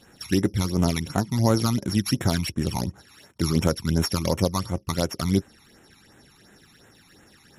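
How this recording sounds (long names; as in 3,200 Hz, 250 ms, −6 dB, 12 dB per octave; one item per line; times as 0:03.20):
a buzz of ramps at a fixed pitch in blocks of 8 samples
phaser sweep stages 12, 2.8 Hz, lowest notch 500–4,800 Hz
MP3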